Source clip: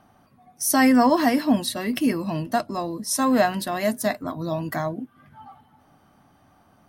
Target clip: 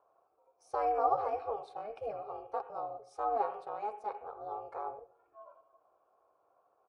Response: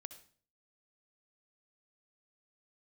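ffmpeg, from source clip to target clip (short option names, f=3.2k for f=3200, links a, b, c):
-filter_complex "[0:a]aresample=22050,aresample=44100,asplit=2[a][b];[b]bass=f=250:g=-5,treble=f=4k:g=-14[c];[1:a]atrim=start_sample=2205,lowpass=2.1k[d];[c][d]afir=irnorm=-1:irlink=0,volume=11dB[e];[a][e]amix=inputs=2:normalize=0,aeval=exprs='val(0)*sin(2*PI*210*n/s)':c=same,asplit=3[f][g][h];[f]bandpass=f=730:t=q:w=8,volume=0dB[i];[g]bandpass=f=1.09k:t=q:w=8,volume=-6dB[j];[h]bandpass=f=2.44k:t=q:w=8,volume=-9dB[k];[i][j][k]amix=inputs=3:normalize=0,volume=-7dB"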